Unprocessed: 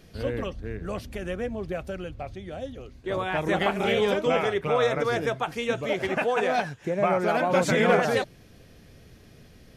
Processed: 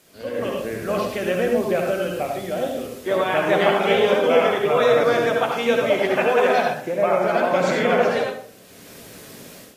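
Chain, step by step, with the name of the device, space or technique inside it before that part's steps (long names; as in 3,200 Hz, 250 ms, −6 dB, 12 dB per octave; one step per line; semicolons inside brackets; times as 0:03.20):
filmed off a television (band-pass filter 240–6,400 Hz; parametric band 600 Hz +5.5 dB 0.25 octaves; convolution reverb RT60 0.50 s, pre-delay 60 ms, DRR 1.5 dB; white noise bed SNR 29 dB; automatic gain control gain up to 12.5 dB; level −4.5 dB; AAC 48 kbit/s 32,000 Hz)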